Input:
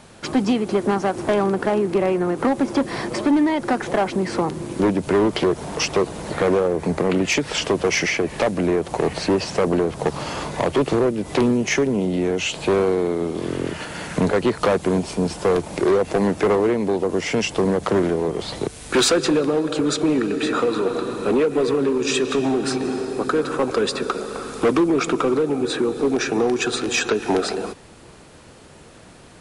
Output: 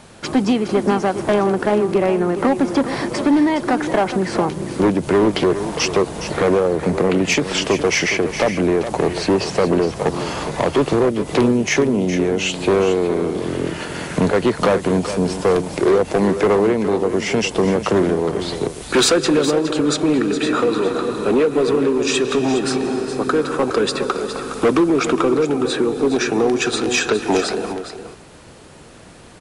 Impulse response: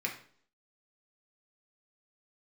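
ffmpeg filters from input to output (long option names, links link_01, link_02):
-af "aecho=1:1:414:0.299,volume=2.5dB"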